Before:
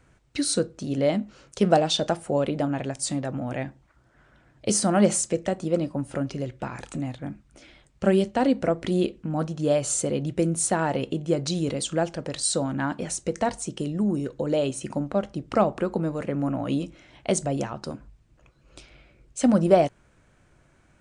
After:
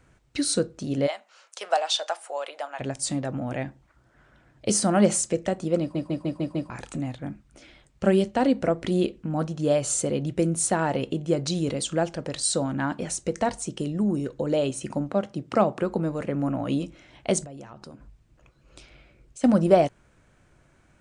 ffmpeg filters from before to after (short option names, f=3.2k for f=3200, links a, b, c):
-filter_complex "[0:a]asplit=3[a][b][c];[a]afade=t=out:st=1.06:d=0.02[d];[b]highpass=f=680:w=0.5412,highpass=f=680:w=1.3066,afade=t=in:st=1.06:d=0.02,afade=t=out:st=2.79:d=0.02[e];[c]afade=t=in:st=2.79:d=0.02[f];[d][e][f]amix=inputs=3:normalize=0,asettb=1/sr,asplit=3[g][h][i];[g]atrim=end=15.094[j];[h]atrim=start=15.09:end=15.82,asetpts=PTS-STARTPTS,afade=t=in:d=0.004:c=qsin,afade=t=out:st=0.726:d=0.004:c=qsin,highpass=f=95:w=0.5412,highpass=f=95:w=1.3066[k];[i]atrim=start=15.816[l];[j][k]acrossfade=d=0.004:c1=hsin:c2=qsin[m];[m][l]acrossfade=d=0.004:c1=qsin:c2=hsin,asettb=1/sr,asplit=3[n][o][p];[n]atrim=end=17.444[q];[o]atrim=start=17.44:end=19.44,asetpts=PTS-STARTPTS,afade=t=in:d=0.004:c=qsin,afade=t=out:st=1.996:d=0.004:c=qsin,acompressor=threshold=-41dB:ratio=4:attack=3.2:release=140:knee=1:detection=peak[r];[p]atrim=start=19.436[s];[q][r]acrossfade=d=0.004:c1=hsin:c2=qsin[t];[t][s]acrossfade=d=0.004:c1=qsin:c2=hsin,asplit=7[u][v][w][x][y][z][aa];[u]atrim=end=5.952[ab];[v]atrim=start=5.798:end=5.952[ac];[w]atrim=start=5.798:end=5.952[ad];[x]atrim=start=5.798:end=5.952[ae];[y]atrim=start=5.798:end=5.952[af];[z]atrim=start=5.798:end=5.952[ag];[aa]atrim=start=6.698[ah];[ab][ac]acrossfade=d=0.004:c1=hsin:c2=hsin[ai];[ai][ad]acrossfade=d=0.004:c1=hsin:c2=hsin[aj];[aj][ae]acrossfade=d=0.004:c1=hsin:c2=hsin[ak];[ak][af]acrossfade=d=0.004:c1=hsin:c2=hsin[al];[al][ag]acrossfade=d=0.004:c1=hsin:c2=hsin[am];[am][ah]acrossfade=d=0.004:c1=hsin:c2=hsin"